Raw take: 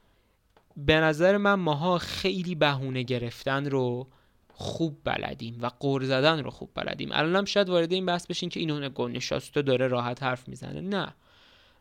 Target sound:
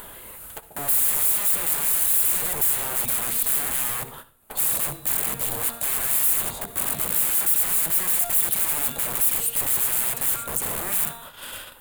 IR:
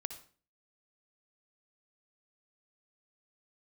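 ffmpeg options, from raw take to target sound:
-filter_complex "[0:a]bandreject=f=232.2:t=h:w=4,bandreject=f=464.4:t=h:w=4,bandreject=f=696.6:t=h:w=4,bandreject=f=928.8:t=h:w=4,bandreject=f=1.161k:t=h:w=4,bandreject=f=1.3932k:t=h:w=4,bandreject=f=1.6254k:t=h:w=4,bandreject=f=1.8576k:t=h:w=4,bandreject=f=2.0898k:t=h:w=4,bandreject=f=2.322k:t=h:w=4,bandreject=f=2.5542k:t=h:w=4,bandreject=f=2.7864k:t=h:w=4,bandreject=f=3.0186k:t=h:w=4,bandreject=f=3.2508k:t=h:w=4,bandreject=f=3.483k:t=h:w=4,bandreject=f=3.7152k:t=h:w=4,bandreject=f=3.9474k:t=h:w=4,bandreject=f=4.1796k:t=h:w=4,bandreject=f=4.4118k:t=h:w=4,bandreject=f=4.644k:t=h:w=4,bandreject=f=4.8762k:t=h:w=4,bandreject=f=5.1084k:t=h:w=4,bandreject=f=5.3406k:t=h:w=4,bandreject=f=5.5728k:t=h:w=4,bandreject=f=5.805k:t=h:w=4,bandreject=f=6.0372k:t=h:w=4,bandreject=f=6.2694k:t=h:w=4,bandreject=f=6.5016k:t=h:w=4,bandreject=f=6.7338k:t=h:w=4,agate=range=-29dB:threshold=-55dB:ratio=16:detection=peak,acompressor=mode=upward:threshold=-28dB:ratio=2.5,aeval=exprs='(mod(53.1*val(0)+1,2)-1)/53.1':c=same,asplit=2[a][b];[b]highpass=f=720:p=1,volume=18dB,asoftclip=type=tanh:threshold=-34.5dB[c];[a][c]amix=inputs=2:normalize=0,lowpass=f=3.2k:p=1,volume=-6dB,aexciter=amount=15.9:drive=6.2:freq=8.1k,asplit=2[d][e];[1:a]atrim=start_sample=2205,lowshelf=f=120:g=10[f];[e][f]afir=irnorm=-1:irlink=0,volume=0.5dB[g];[d][g]amix=inputs=2:normalize=0"

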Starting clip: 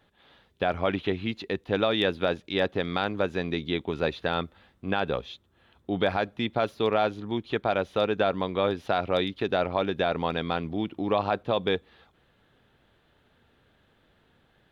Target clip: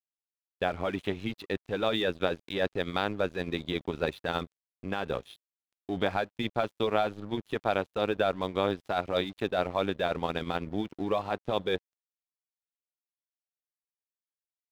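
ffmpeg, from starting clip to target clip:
-af "aeval=exprs='sgn(val(0))*max(abs(val(0))-0.00501,0)':c=same,tremolo=f=100:d=0.621"

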